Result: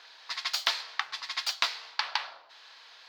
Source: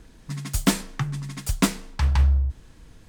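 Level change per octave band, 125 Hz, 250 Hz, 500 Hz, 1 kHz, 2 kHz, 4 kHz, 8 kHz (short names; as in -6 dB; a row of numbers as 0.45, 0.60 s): under -40 dB, under -40 dB, -13.5 dB, -1.5 dB, +1.5 dB, +4.5 dB, -9.5 dB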